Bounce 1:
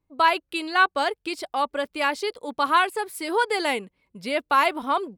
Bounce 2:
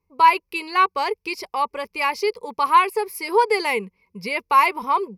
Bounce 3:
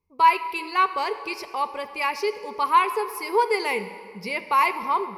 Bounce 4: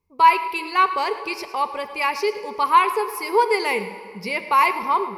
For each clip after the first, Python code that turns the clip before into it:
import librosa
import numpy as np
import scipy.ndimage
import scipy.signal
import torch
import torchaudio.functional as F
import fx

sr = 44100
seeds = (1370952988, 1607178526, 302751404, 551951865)

y1 = fx.ripple_eq(x, sr, per_octave=0.83, db=14)
y2 = fx.rev_plate(y1, sr, seeds[0], rt60_s=2.0, hf_ratio=0.7, predelay_ms=0, drr_db=10.0)
y2 = y2 * 10.0 ** (-3.5 / 20.0)
y3 = y2 + 10.0 ** (-16.0 / 20.0) * np.pad(y2, (int(109 * sr / 1000.0), 0))[:len(y2)]
y3 = y3 * 10.0 ** (3.0 / 20.0)